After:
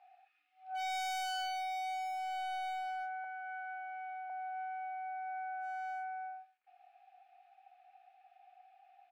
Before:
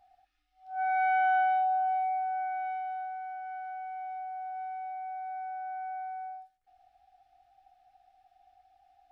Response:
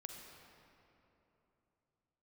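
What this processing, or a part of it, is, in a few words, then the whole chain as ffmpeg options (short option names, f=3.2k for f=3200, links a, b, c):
megaphone: -filter_complex "[0:a]highpass=670,lowpass=2.7k,equalizer=f=2.5k:t=o:w=0.26:g=11,asoftclip=type=hard:threshold=-36dB,asplit=2[a][b];[b]adelay=30,volume=-9dB[c];[a][c]amix=inputs=2:normalize=0,asettb=1/sr,asplit=3[d][e][f];[d]atrim=end=3.244[g];[e]atrim=start=3.24:end=4.3,asetpts=PTS-STARTPTS,afade=t=in:d=0.004:c=qsin,afade=t=out:st=1.056:d=0.004:c=qsin,highpass=680[h];[f]atrim=start=4.296[i];[g][h]acrossfade=d=0.004:c1=hsin:c2=qsin[j];[j][i]acrossfade=d=0.004:c1=qsin:c2=hsin,volume=2.5dB"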